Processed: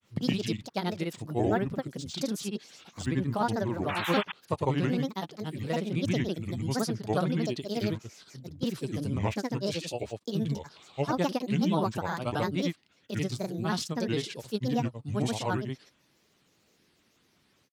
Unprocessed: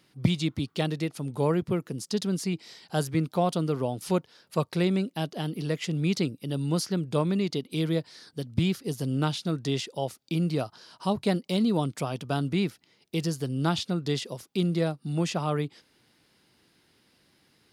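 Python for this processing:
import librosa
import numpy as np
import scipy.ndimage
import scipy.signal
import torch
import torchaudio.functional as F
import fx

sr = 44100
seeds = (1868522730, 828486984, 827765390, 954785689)

y = fx.spec_paint(x, sr, seeds[0], shape='noise', start_s=3.86, length_s=0.37, low_hz=670.0, high_hz=3100.0, level_db=-32.0)
y = fx.dynamic_eq(y, sr, hz=1100.0, q=0.9, threshold_db=-39.0, ratio=4.0, max_db=4)
y = fx.granulator(y, sr, seeds[1], grain_ms=100.0, per_s=30.0, spray_ms=100.0, spread_st=7)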